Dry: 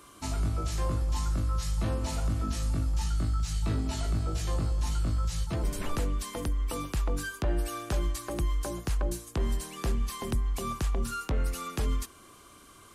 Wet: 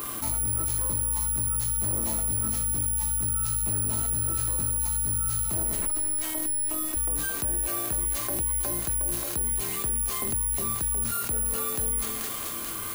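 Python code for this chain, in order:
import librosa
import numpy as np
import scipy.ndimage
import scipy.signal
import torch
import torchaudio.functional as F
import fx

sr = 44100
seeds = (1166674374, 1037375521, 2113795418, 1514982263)

p1 = fx.high_shelf(x, sr, hz=3700.0, db=-6.5)
p2 = fx.comb_fb(p1, sr, f0_hz=110.0, decay_s=0.85, harmonics='all', damping=0.0, mix_pct=80)
p3 = fx.robotise(p2, sr, hz=312.0, at=(5.87, 6.97))
p4 = p3 + fx.echo_thinned(p3, sr, ms=218, feedback_pct=62, hz=800.0, wet_db=-7.0, dry=0)
p5 = 10.0 ** (-38.5 / 20.0) * np.tanh(p4 / 10.0 ** (-38.5 / 20.0))
p6 = (np.kron(p5[::4], np.eye(4)[0]) * 4)[:len(p5)]
p7 = fx.env_flatten(p6, sr, amount_pct=70)
y = p7 * 10.0 ** (8.0 / 20.0)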